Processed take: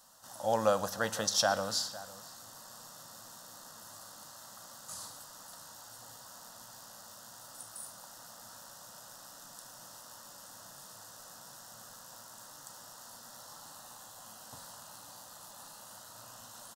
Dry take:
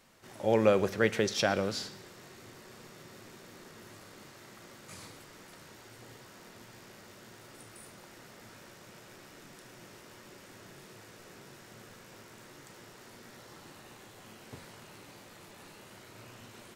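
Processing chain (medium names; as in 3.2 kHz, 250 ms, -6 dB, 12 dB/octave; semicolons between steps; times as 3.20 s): tone controls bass -11 dB, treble +6 dB; static phaser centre 940 Hz, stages 4; echo from a far wall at 87 m, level -17 dB; trim +3.5 dB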